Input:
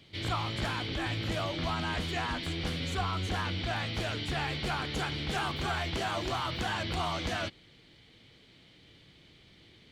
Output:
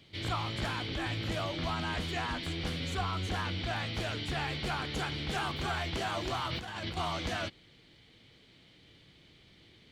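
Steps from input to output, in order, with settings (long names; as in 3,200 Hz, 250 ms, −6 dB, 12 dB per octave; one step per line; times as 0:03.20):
0:06.48–0:06.97: compressor whose output falls as the input rises −36 dBFS, ratio −0.5
level −1.5 dB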